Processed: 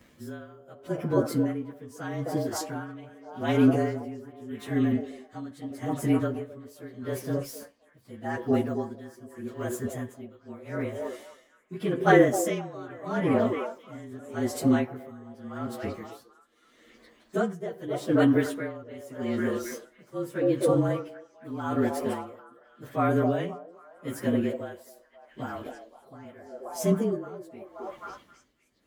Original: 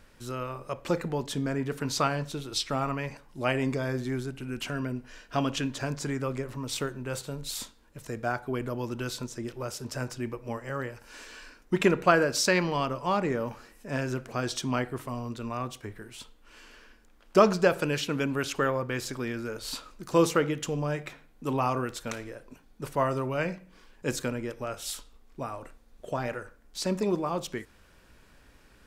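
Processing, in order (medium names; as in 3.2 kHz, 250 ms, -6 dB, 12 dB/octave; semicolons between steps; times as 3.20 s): frequency axis rescaled in octaves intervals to 110%; high-pass 66 Hz; peaking EQ 260 Hz +8 dB 1.3 oct; repeats whose band climbs or falls 264 ms, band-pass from 490 Hz, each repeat 0.7 oct, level -1.5 dB; dynamic bell 4.2 kHz, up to -5 dB, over -50 dBFS, Q 0.93; logarithmic tremolo 0.82 Hz, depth 19 dB; trim +4 dB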